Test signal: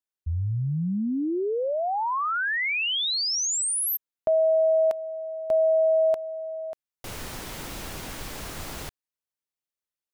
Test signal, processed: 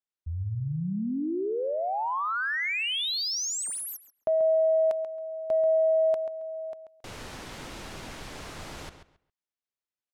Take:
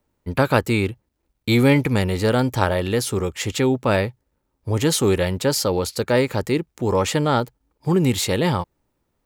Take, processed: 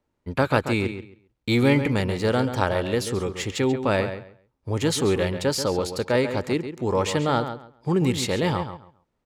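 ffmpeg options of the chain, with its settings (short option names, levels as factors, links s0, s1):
-filter_complex "[0:a]lowshelf=f=110:g=-4,adynamicsmooth=sensitivity=4.5:basefreq=7700,asplit=2[s0][s1];[s1]adelay=136,lowpass=f=4200:p=1,volume=0.335,asplit=2[s2][s3];[s3]adelay=136,lowpass=f=4200:p=1,volume=0.21,asplit=2[s4][s5];[s5]adelay=136,lowpass=f=4200:p=1,volume=0.21[s6];[s2][s4][s6]amix=inputs=3:normalize=0[s7];[s0][s7]amix=inputs=2:normalize=0,volume=0.708"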